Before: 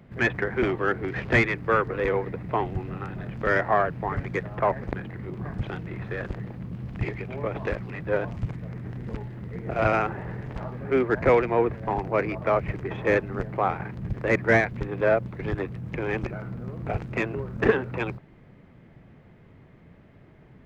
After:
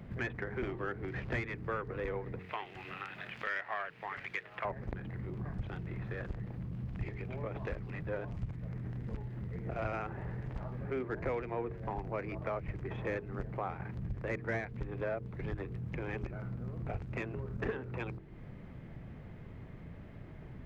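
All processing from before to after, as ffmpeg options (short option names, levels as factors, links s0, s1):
-filter_complex "[0:a]asettb=1/sr,asplit=3[s0][s1][s2];[s0]atrim=end=2.394[s3];[s1]atrim=start=2.39:end=4.65,asetpts=PTS-STARTPTS,afade=t=in:d=0.004:c=qsin,afade=t=out:st=2.256:d=0.004:c=qsin,highpass=f=1400:p=1,equalizer=f=2700:t=o:w=1.6:g=10.5[s4];[s2]atrim=start=4.646[s5];[s3][s4]acrossfade=d=0.004:c1=hsin:c2=qsin[s6];[s6][s5]acrossfade=d=0.004:c1=qsin:c2=hsin,lowshelf=f=110:g=9.5,bandreject=f=45.99:t=h:w=4,bandreject=f=91.98:t=h:w=4,bandreject=f=137.97:t=h:w=4,bandreject=f=183.96:t=h:w=4,bandreject=f=229.95:t=h:w=4,bandreject=f=275.94:t=h:w=4,bandreject=f=321.93:t=h:w=4,bandreject=f=367.92:t=h:w=4,bandreject=f=413.91:t=h:w=4,bandreject=f=459.9:t=h:w=4,acompressor=threshold=0.00708:ratio=2.5,volume=1.12"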